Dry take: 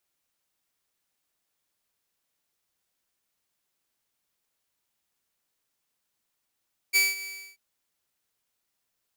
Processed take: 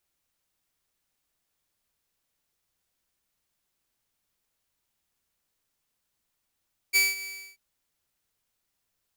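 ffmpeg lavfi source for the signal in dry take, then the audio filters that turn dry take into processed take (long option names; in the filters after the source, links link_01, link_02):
-f lavfi -i "aevalsrc='0.178*(2*mod(2300*t,1)-1)':duration=0.637:sample_rate=44100,afade=type=in:duration=0.03,afade=type=out:start_time=0.03:duration=0.188:silence=0.141,afade=type=out:start_time=0.3:duration=0.337"
-af "lowshelf=frequency=110:gain=10.5"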